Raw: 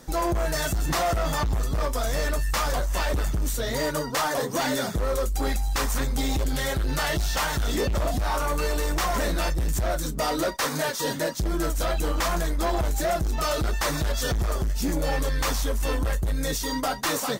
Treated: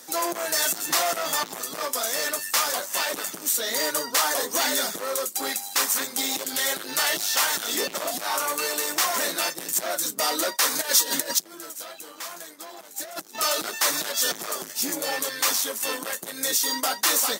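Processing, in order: 10.81–13.35 s: compressor with a negative ratio -31 dBFS, ratio -0.5; high-pass 210 Hz 24 dB/octave; tilt EQ +3 dB/octave

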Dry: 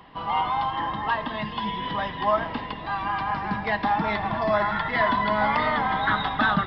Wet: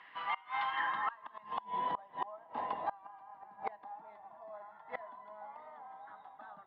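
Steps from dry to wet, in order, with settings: band-pass sweep 1.9 kHz -> 760 Hz, 0.73–1.75 s; inverted gate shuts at -25 dBFS, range -25 dB; trim +2 dB

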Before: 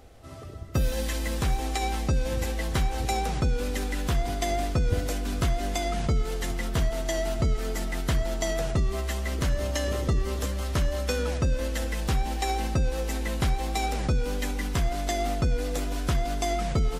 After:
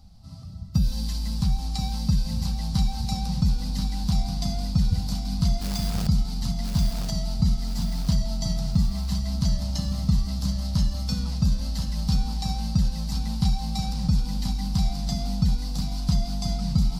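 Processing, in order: FFT filter 120 Hz 0 dB, 190 Hz +8 dB, 400 Hz -30 dB, 850 Hz -8 dB, 1.8 kHz -21 dB, 3.3 kHz -11 dB, 4.6 kHz +5 dB, 6.8 kHz -9 dB; 5.61–6.07 s: companded quantiser 4-bit; on a send: thinning echo 1032 ms, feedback 50%, high-pass 180 Hz, level -4 dB; on the sum: trim +2.5 dB

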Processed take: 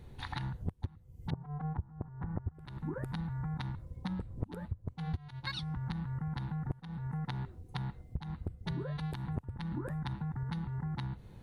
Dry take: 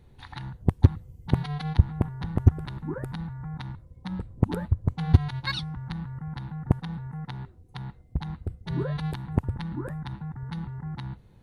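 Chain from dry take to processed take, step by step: 1.29–2.53 s: low-pass 1.1 kHz -> 1.8 kHz 24 dB/octave; compression 20:1, threshold -37 dBFS, peak gain reduction 28.5 dB; trim +3.5 dB

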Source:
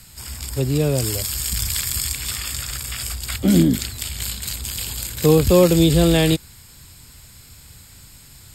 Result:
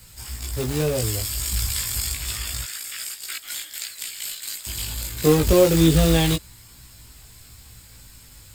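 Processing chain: 2.64–4.67 s: Chebyshev high-pass 1.5 kHz, order 3; companded quantiser 4-bit; chorus voices 4, 0.26 Hz, delay 18 ms, depth 2 ms

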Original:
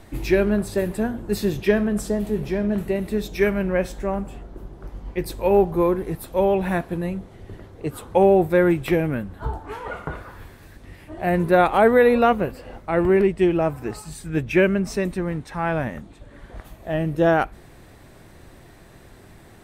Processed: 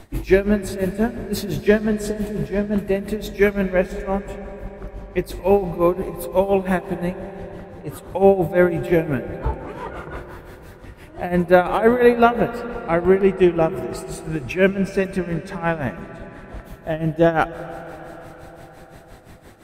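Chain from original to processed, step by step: tremolo 5.8 Hz, depth 84%; reverberation RT60 5.0 s, pre-delay 115 ms, DRR 12.5 dB; trim +4.5 dB

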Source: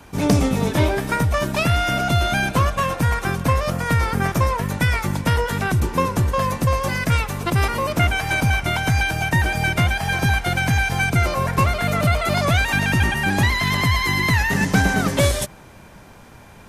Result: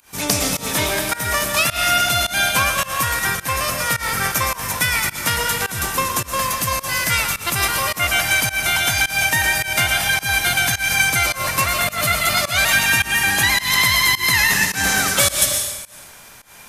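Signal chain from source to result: tilt shelf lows -8 dB, about 790 Hz; algorithmic reverb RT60 1.1 s, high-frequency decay 1×, pre-delay 85 ms, DRR 3 dB; volume shaper 106 bpm, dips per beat 1, -22 dB, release 174 ms; treble shelf 6.6 kHz +10 dB; trim -2.5 dB

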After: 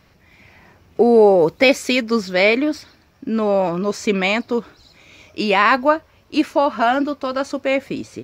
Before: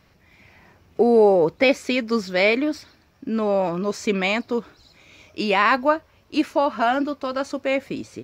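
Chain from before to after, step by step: 1.38–2.00 s: treble shelf 6.7 kHz -> 4.5 kHz +9 dB; trim +3.5 dB

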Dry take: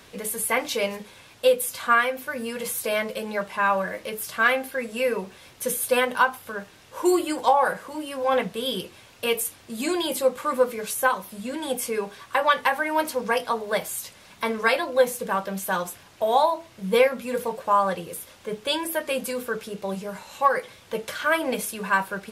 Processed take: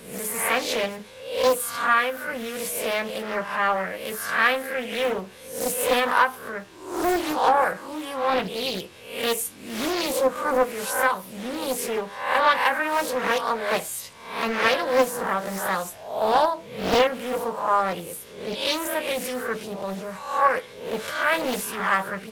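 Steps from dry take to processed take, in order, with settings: reverse spectral sustain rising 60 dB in 0.63 s; loudspeaker Doppler distortion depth 0.7 ms; trim -1.5 dB

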